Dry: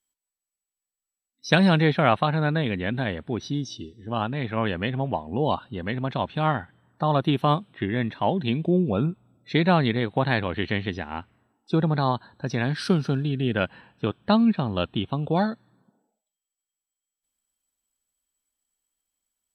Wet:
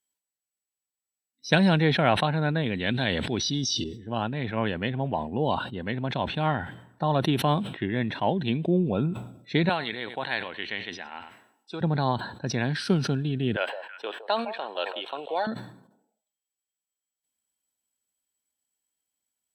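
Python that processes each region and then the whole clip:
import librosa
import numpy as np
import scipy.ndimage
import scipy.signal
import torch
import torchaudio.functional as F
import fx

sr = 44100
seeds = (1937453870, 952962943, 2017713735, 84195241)

y = fx.chain(x, sr, fx.peak_eq(hz=5000.0, db=14.0, octaves=1.6),
    fx.sustainer(db_per_s=23.0), at=(2.75, 3.84))
y = fx.chain(y, sr, fx.highpass(hz=1200.0, slope=6),
    fx.echo_single(ms=95, db=-19.5), at=(9.69, 11.81))
y = fx.chain(y, sr, fx.highpass(hz=470.0, slope=24),
    fx.echo_stepped(ms=162, hz=680.0, octaves=1.4, feedback_pct=70, wet_db=-8.5), at=(13.56, 15.47))
y = scipy.signal.sosfilt(scipy.signal.butter(2, 83.0, 'highpass', fs=sr, output='sos'), y)
y = fx.notch(y, sr, hz=1200.0, q=7.1)
y = fx.sustainer(y, sr, db_per_s=83.0)
y = y * librosa.db_to_amplitude(-2.0)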